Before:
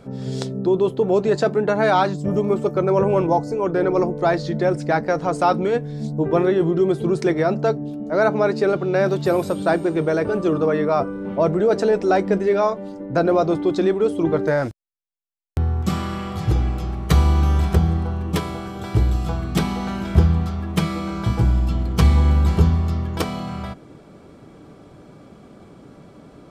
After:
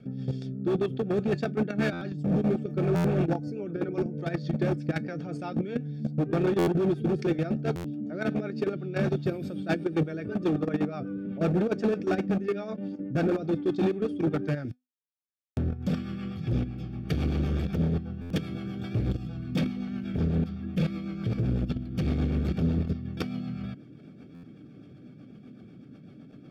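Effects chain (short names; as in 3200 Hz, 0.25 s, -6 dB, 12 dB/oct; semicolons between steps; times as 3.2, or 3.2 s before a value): ten-band EQ 125 Hz +11 dB, 250 Hz +9 dB, 500 Hz -3 dB, 1000 Hz -4 dB, 2000 Hz +5 dB, 4000 Hz +9 dB, 8000 Hz -9 dB; level quantiser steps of 14 dB; notch 4000 Hz, Q 5.2; hard clip -15.5 dBFS, distortion -10 dB; resonator 250 Hz, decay 0.22 s, harmonics all, mix 40%; rotary speaker horn 8 Hz; notch comb 1000 Hz; stuck buffer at 1.92/2.95/6.58/7.75/18.21/24.34, samples 512, times 7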